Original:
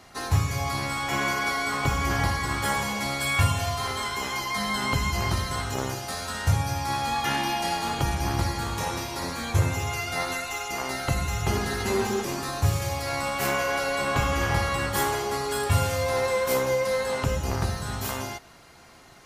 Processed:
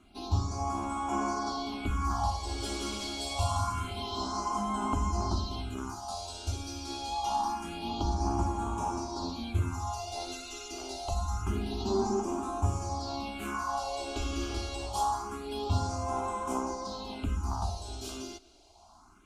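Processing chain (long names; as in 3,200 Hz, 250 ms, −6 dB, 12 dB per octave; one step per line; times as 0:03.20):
high-frequency loss of the air 81 metres
phaser with its sweep stopped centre 500 Hz, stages 6
0:02.30–0:04.61: bouncing-ball delay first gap 170 ms, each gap 0.7×, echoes 5
all-pass phaser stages 4, 0.26 Hz, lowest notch 150–4,300 Hz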